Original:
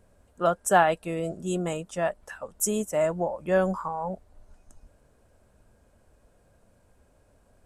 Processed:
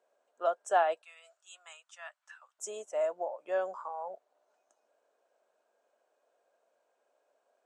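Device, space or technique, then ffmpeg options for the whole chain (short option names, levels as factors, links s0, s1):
phone speaker on a table: -filter_complex "[0:a]highpass=f=430:w=0.5412,highpass=f=430:w=1.3066,equalizer=f=680:t=q:w=4:g=5,equalizer=f=2000:t=q:w=4:g=-3,equalizer=f=4900:t=q:w=4:g=-4,lowpass=f=7100:w=0.5412,lowpass=f=7100:w=1.3066,asettb=1/sr,asplit=3[s0][s1][s2];[s0]atrim=end=1.024[s3];[s1]atrim=start=1.02:end=2.59,asetpts=PTS-STARTPTS,afade=t=in:d=0.004:c=qsin,afade=t=out:st=1.566:d=0.004:c=qsin,highpass=f=1200:w=0.5412,highpass=f=1200:w=1.3066[s4];[s2]atrim=start=2.586[s5];[s3][s4]acrossfade=d=0.004:c1=hsin:c2=qsin[s6];[s6][s5]acrossfade=d=0.004:c1=qsin:c2=hsin,volume=0.355"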